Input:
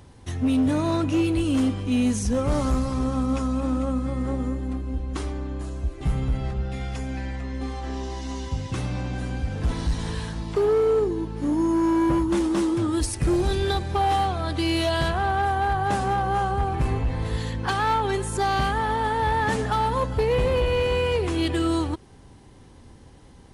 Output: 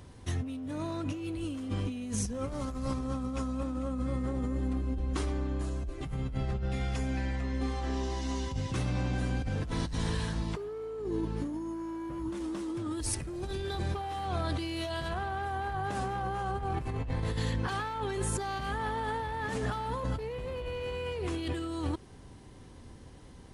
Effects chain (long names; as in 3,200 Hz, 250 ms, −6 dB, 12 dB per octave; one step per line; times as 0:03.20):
notch filter 830 Hz, Q 15
compressor whose output falls as the input rises −28 dBFS, ratio −1
level −5.5 dB